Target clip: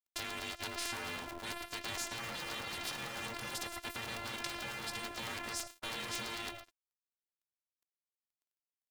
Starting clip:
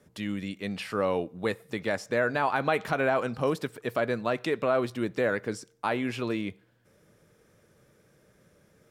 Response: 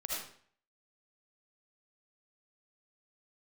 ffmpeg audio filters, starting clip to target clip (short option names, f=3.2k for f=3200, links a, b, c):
-filter_complex "[0:a]asplit=2[a][b];[1:a]atrim=start_sample=2205,highshelf=f=10k:g=5,adelay=23[c];[b][c]afir=irnorm=-1:irlink=0,volume=-15.5dB[d];[a][d]amix=inputs=2:normalize=0,afftfilt=real='hypot(re,im)*cos(PI*b)':imag='0':win_size=512:overlap=0.75,alimiter=limit=-24dB:level=0:latency=1:release=18,aeval=exprs='sgn(val(0))*max(abs(val(0))-0.00266,0)':c=same,afftfilt=real='re*lt(hypot(re,im),0.02)':imag='im*lt(hypot(re,im),0.02)':win_size=1024:overlap=0.75,aeval=exprs='val(0)*sgn(sin(2*PI*340*n/s))':c=same,volume=9.5dB"